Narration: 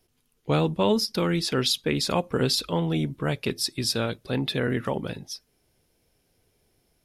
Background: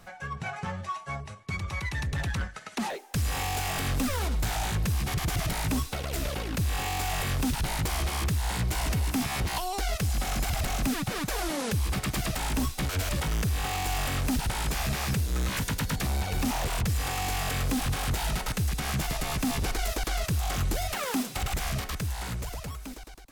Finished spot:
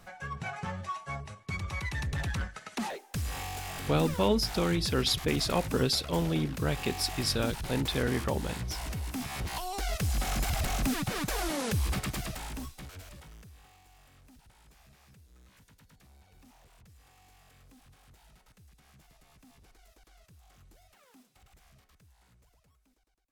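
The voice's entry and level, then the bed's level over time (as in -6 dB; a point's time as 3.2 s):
3.40 s, -4.0 dB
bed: 2.75 s -2.5 dB
3.61 s -8.5 dB
9.08 s -8.5 dB
10.15 s -1.5 dB
11.91 s -1.5 dB
13.85 s -30.5 dB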